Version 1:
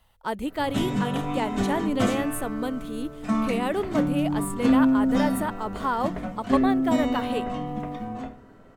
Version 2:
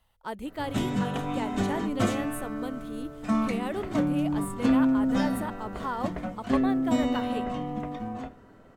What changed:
speech −6.5 dB
background: send −8.0 dB

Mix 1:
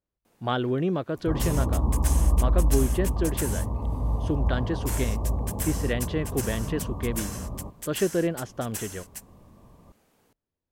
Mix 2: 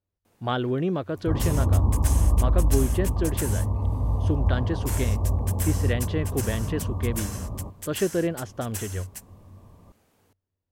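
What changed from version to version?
master: add parametric band 94 Hz +15 dB 0.2 octaves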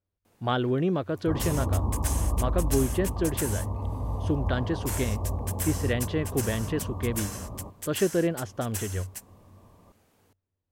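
second sound: add low-shelf EQ 220 Hz −7.5 dB

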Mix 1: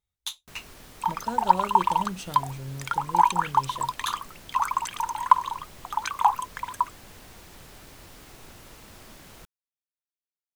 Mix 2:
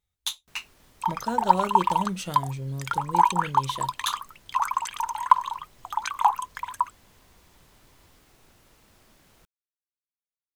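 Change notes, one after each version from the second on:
speech +4.0 dB
first sound −11.0 dB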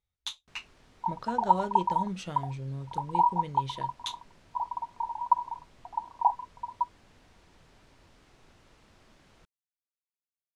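speech −4.0 dB
second sound: add Chebyshev low-pass with heavy ripple 990 Hz, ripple 6 dB
master: add high-frequency loss of the air 77 metres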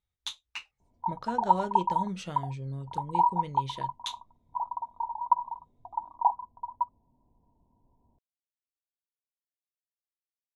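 first sound: muted

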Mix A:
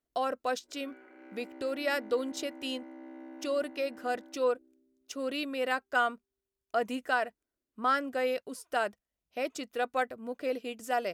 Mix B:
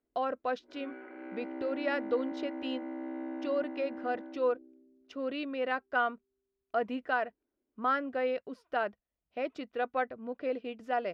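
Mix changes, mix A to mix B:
background +8.5 dB
master: add high-frequency loss of the air 310 metres

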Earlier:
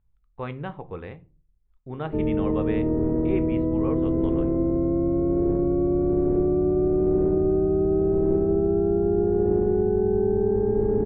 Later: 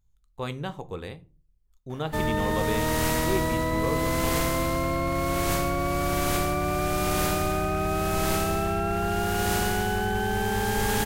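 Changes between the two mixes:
background: remove low-pass with resonance 380 Hz, resonance Q 3.9
master: remove low-pass filter 2,500 Hz 24 dB per octave

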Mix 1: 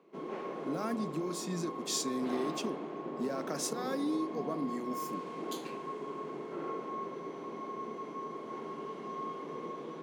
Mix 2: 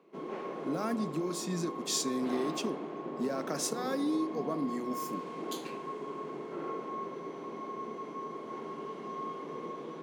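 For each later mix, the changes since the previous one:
reverb: on, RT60 1.1 s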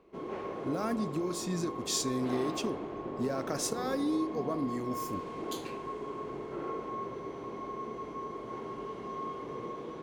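master: remove Chebyshev high-pass filter 150 Hz, order 5

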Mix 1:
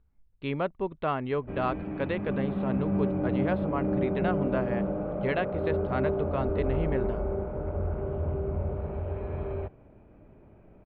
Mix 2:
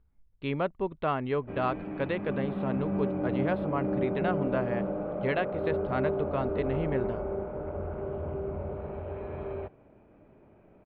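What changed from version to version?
background: add low-shelf EQ 120 Hz −11.5 dB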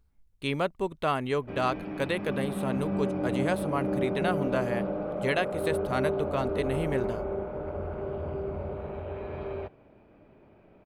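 speech: add parametric band 9,000 Hz +10.5 dB 0.64 octaves
master: remove high-frequency loss of the air 360 metres

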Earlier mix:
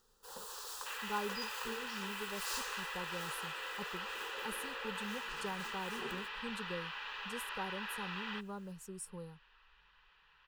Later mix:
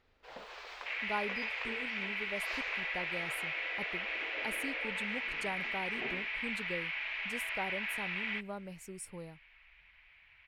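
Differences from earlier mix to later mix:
first sound: add high-frequency loss of the air 240 metres
second sound −6.0 dB
master: remove phaser with its sweep stopped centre 440 Hz, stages 8

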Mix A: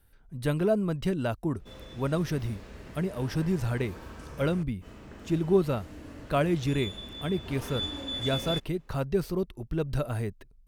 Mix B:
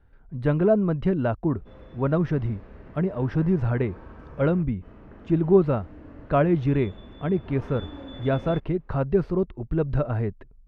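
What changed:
speech +5.5 dB
master: add low-pass filter 1,600 Hz 12 dB per octave

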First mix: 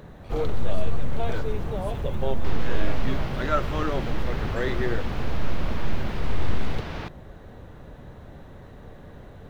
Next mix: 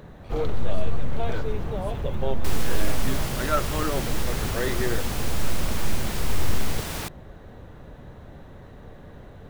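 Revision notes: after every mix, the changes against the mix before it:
second sound: remove high-frequency loss of the air 270 metres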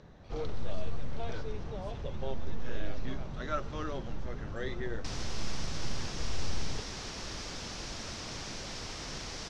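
second sound: entry +2.60 s
master: add transistor ladder low-pass 6,300 Hz, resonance 55%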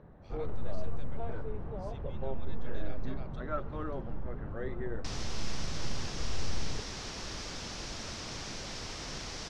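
first sound: add low-pass filter 1,400 Hz 12 dB per octave

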